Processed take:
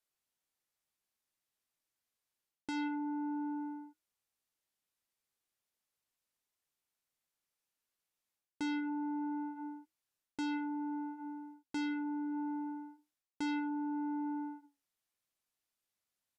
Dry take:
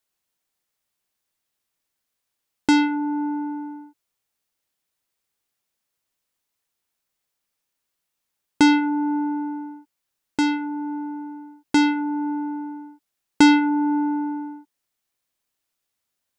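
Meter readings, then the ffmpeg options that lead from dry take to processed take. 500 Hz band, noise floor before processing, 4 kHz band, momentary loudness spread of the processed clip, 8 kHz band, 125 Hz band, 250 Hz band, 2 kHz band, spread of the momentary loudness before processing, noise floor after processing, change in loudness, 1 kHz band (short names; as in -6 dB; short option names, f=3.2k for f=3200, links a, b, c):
under -15 dB, -81 dBFS, -21.0 dB, 11 LU, under -20 dB, n/a, -16.0 dB, -18.5 dB, 18 LU, under -85 dBFS, -17.0 dB, -16.5 dB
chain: -af "areverse,acompressor=threshold=-28dB:ratio=10,areverse,flanger=delay=7.5:depth=2.2:regen=-75:speed=0.29:shape=sinusoidal,aresample=32000,aresample=44100,volume=-4dB"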